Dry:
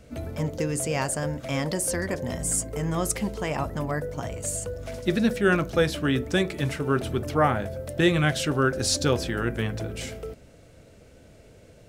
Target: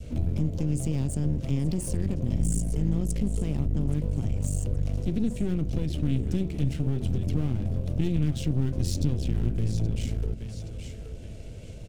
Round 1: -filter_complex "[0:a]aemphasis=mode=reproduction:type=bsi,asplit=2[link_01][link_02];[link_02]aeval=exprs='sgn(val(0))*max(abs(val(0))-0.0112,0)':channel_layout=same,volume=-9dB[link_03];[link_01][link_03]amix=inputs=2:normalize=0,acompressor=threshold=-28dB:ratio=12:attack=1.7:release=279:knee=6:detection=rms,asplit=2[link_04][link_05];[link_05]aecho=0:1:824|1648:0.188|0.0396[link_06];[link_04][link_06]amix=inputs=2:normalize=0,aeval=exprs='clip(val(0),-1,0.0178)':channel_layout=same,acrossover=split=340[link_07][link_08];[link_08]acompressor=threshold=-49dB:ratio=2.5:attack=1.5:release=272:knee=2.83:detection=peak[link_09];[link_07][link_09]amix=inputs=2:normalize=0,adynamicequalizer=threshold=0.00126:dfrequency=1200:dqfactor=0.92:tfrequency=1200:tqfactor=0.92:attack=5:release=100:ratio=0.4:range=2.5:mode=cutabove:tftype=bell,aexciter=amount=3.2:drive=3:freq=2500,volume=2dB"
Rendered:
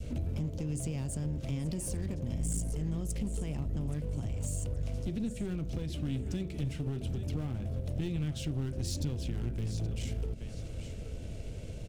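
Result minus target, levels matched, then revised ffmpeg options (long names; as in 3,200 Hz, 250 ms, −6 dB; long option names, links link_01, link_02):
downward compressor: peak gain reduction +10 dB
-filter_complex "[0:a]aemphasis=mode=reproduction:type=bsi,asplit=2[link_01][link_02];[link_02]aeval=exprs='sgn(val(0))*max(abs(val(0))-0.0112,0)':channel_layout=same,volume=-9dB[link_03];[link_01][link_03]amix=inputs=2:normalize=0,acompressor=threshold=-17dB:ratio=12:attack=1.7:release=279:knee=6:detection=rms,asplit=2[link_04][link_05];[link_05]aecho=0:1:824|1648:0.188|0.0396[link_06];[link_04][link_06]amix=inputs=2:normalize=0,aeval=exprs='clip(val(0),-1,0.0178)':channel_layout=same,acrossover=split=340[link_07][link_08];[link_08]acompressor=threshold=-49dB:ratio=2.5:attack=1.5:release=272:knee=2.83:detection=peak[link_09];[link_07][link_09]amix=inputs=2:normalize=0,adynamicequalizer=threshold=0.00126:dfrequency=1200:dqfactor=0.92:tfrequency=1200:tqfactor=0.92:attack=5:release=100:ratio=0.4:range=2.5:mode=cutabove:tftype=bell,aexciter=amount=3.2:drive=3:freq=2500,volume=2dB"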